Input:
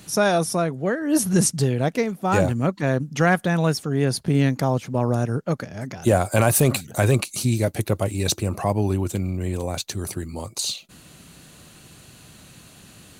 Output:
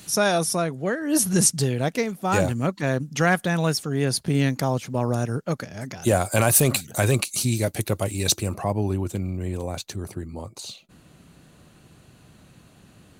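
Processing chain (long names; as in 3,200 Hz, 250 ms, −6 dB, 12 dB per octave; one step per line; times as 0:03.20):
high-shelf EQ 2,200 Hz +6 dB, from 0:08.54 −3.5 dB, from 0:09.96 −10.5 dB
level −2.5 dB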